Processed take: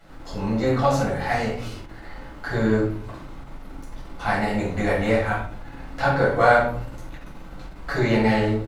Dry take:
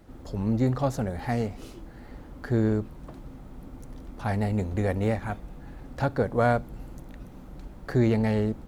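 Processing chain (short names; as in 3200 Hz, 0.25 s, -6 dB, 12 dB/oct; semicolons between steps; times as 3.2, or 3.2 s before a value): LPF 3200 Hz 6 dB/oct; tilt shelf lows -8.5 dB, about 770 Hz; doubler 44 ms -9 dB; shoebox room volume 630 m³, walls furnished, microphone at 7.2 m; ending taper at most 130 dB/s; gain -2 dB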